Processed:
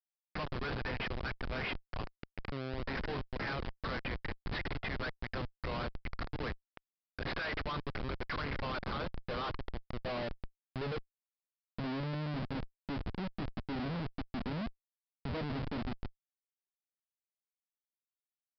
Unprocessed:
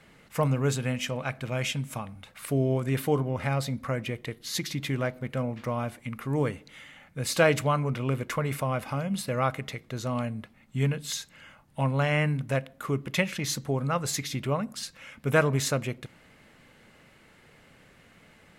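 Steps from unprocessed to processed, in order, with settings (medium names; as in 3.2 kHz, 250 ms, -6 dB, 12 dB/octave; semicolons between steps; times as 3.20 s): band-pass sweep 1.7 kHz -> 260 Hz, 8.67–12.06 s; Schmitt trigger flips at -42.5 dBFS; resampled via 11.025 kHz; trim +4 dB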